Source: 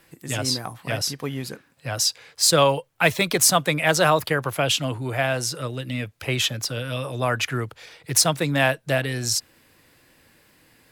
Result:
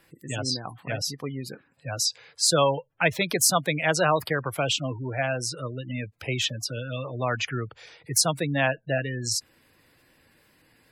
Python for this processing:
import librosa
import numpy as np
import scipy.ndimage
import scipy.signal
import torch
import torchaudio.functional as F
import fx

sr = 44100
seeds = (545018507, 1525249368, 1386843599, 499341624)

y = fx.spec_gate(x, sr, threshold_db=-20, keep='strong')
y = F.gain(torch.from_numpy(y), -3.5).numpy()